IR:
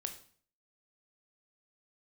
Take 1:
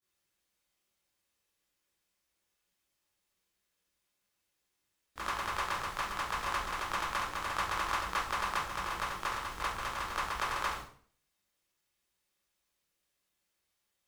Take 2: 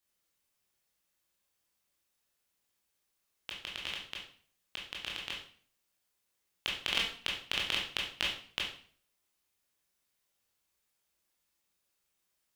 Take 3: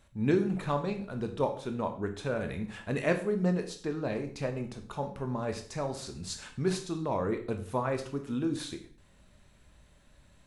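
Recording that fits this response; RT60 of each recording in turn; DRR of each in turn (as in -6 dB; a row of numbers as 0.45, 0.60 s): 3; 0.50, 0.50, 0.50 s; -12.5, -3.0, 5.5 dB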